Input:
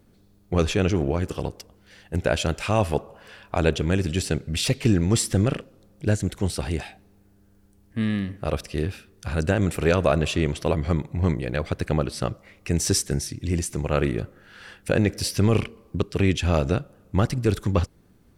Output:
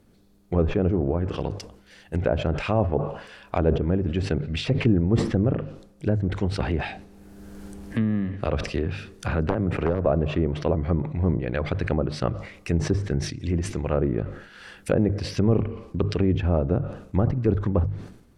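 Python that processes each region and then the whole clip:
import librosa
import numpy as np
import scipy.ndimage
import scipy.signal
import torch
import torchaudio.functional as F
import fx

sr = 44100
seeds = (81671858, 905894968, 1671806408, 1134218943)

y = fx.chain(x, sr, fx.overflow_wrap(gain_db=10.5),
    fx.band_squash(depth_pct=70), at=(6.6, 10.06))
y = fx.env_lowpass_down(y, sr, base_hz=790.0, full_db=-18.0)
y = fx.hum_notches(y, sr, base_hz=50, count=3)
y = fx.sustainer(y, sr, db_per_s=82.0)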